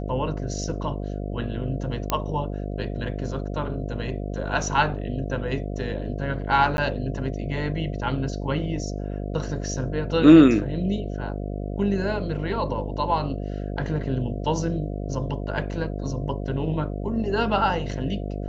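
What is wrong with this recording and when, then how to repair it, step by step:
mains buzz 50 Hz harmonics 14 −30 dBFS
0:02.10: click −7 dBFS
0:06.77–0:06.78: drop-out 11 ms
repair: click removal
hum removal 50 Hz, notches 14
repair the gap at 0:06.77, 11 ms

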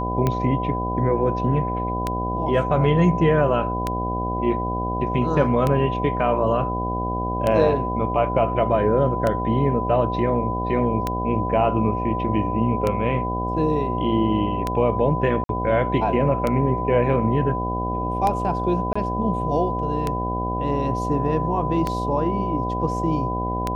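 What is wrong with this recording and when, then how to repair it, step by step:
mains buzz 60 Hz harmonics 13 −27 dBFS
scratch tick 33 1/3 rpm −9 dBFS
whistle 1,000 Hz −26 dBFS
0:15.44–0:15.49: drop-out 52 ms
0:18.93–0:18.95: drop-out 25 ms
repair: click removal
hum removal 60 Hz, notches 13
notch filter 1,000 Hz, Q 30
repair the gap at 0:15.44, 52 ms
repair the gap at 0:18.93, 25 ms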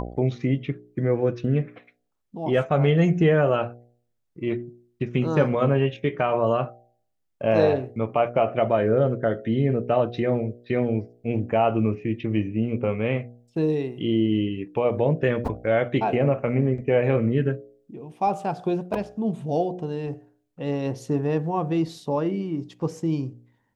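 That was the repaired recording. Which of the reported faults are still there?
none of them is left

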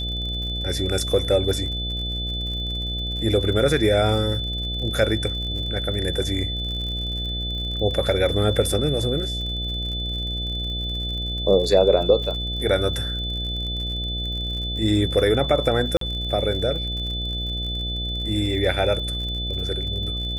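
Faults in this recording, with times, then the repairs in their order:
mains buzz 60 Hz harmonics 12 −29 dBFS
surface crackle 57 per second −32 dBFS
whistle 3,500 Hz −28 dBFS
0:12.24: drop-out 2.4 ms
0:15.97–0:16.01: drop-out 43 ms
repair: click removal
hum removal 60 Hz, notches 12
notch filter 3,500 Hz, Q 30
repair the gap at 0:12.24, 2.4 ms
repair the gap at 0:15.97, 43 ms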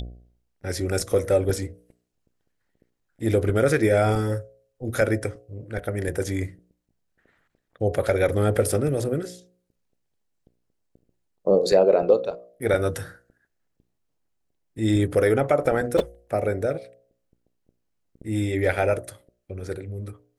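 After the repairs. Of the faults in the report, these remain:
none of them is left

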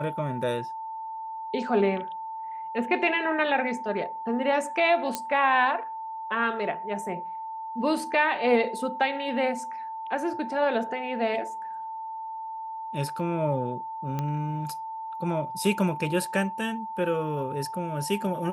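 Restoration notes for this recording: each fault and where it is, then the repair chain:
whistle 890 Hz −33 dBFS
0:05.15: click −11 dBFS
0:14.19: click −17 dBFS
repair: click removal
notch filter 890 Hz, Q 30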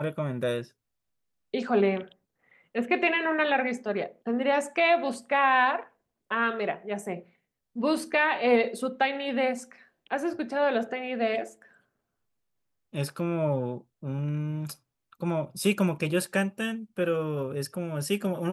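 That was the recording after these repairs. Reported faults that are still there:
none of them is left

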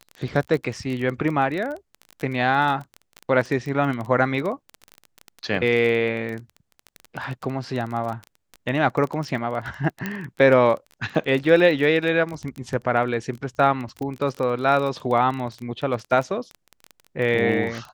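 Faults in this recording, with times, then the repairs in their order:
surface crackle 21 per second −27 dBFS
0:10.06: click −13 dBFS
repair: click removal

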